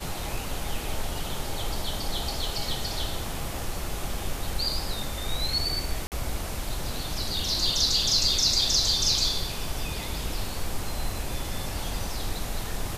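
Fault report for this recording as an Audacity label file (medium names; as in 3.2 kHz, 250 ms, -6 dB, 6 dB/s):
6.070000	6.120000	dropout 48 ms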